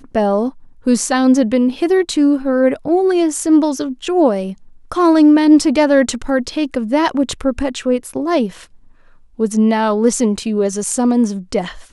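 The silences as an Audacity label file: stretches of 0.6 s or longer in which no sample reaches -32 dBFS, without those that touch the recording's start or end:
8.640000	9.390000	silence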